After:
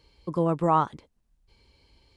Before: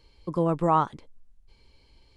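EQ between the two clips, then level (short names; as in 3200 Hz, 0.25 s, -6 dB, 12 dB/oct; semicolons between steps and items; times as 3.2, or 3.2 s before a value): HPF 40 Hz; 0.0 dB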